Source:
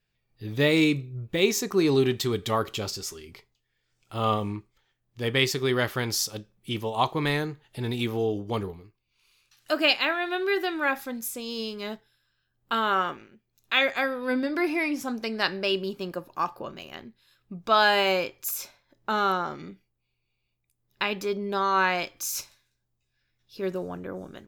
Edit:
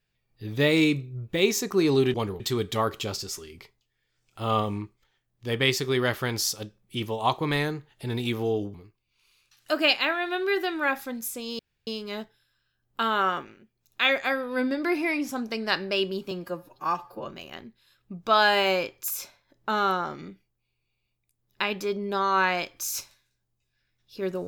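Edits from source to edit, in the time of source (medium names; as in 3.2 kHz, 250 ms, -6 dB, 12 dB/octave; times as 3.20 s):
8.48–8.74 s: move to 2.14 s
11.59 s: insert room tone 0.28 s
16.03–16.66 s: stretch 1.5×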